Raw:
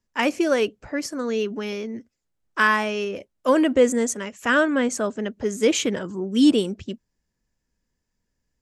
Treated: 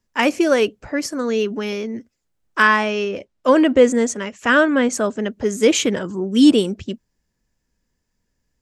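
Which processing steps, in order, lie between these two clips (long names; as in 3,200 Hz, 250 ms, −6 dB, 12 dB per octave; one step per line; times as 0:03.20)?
0:02.62–0:04.93: low-pass filter 6,500 Hz 12 dB per octave
level +4.5 dB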